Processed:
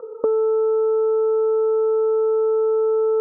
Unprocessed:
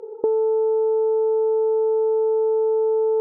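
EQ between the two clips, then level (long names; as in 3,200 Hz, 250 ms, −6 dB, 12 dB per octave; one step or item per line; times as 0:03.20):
low-pass with resonance 1,200 Hz, resonance Q 11
phaser with its sweep stopped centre 560 Hz, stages 8
+4.5 dB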